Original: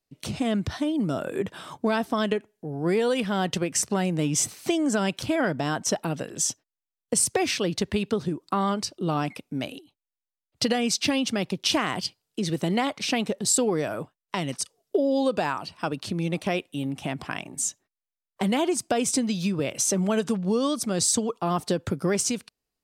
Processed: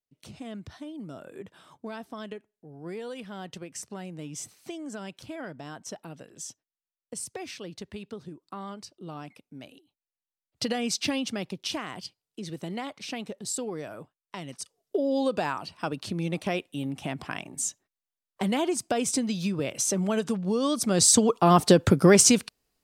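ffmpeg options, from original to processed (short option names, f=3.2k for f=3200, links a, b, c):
-af "volume=14.5dB,afade=t=in:st=9.7:d=1.3:silence=0.298538,afade=t=out:st=11:d=0.83:silence=0.473151,afade=t=in:st=14.52:d=0.62:silence=0.421697,afade=t=in:st=20.57:d=1.06:silence=0.298538"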